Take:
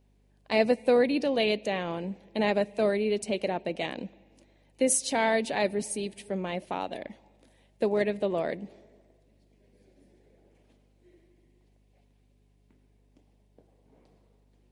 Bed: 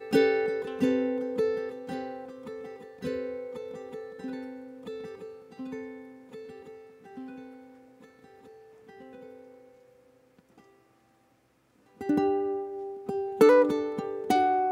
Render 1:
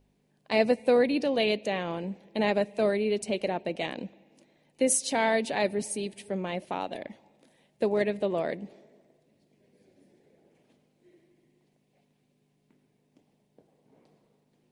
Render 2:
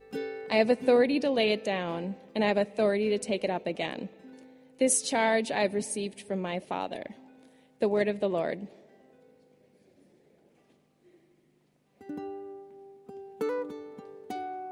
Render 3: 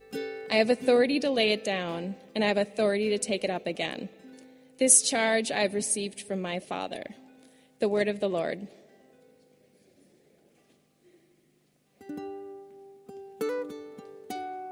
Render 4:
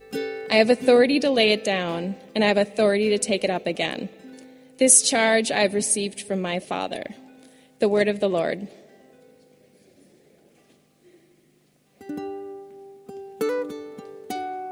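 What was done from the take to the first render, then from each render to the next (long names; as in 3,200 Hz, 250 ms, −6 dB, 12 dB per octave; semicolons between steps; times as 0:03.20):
hum removal 50 Hz, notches 2
mix in bed −13 dB
high-shelf EQ 3,600 Hz +9 dB; notch filter 930 Hz, Q 6.9
level +6 dB; brickwall limiter −2 dBFS, peak gain reduction 3 dB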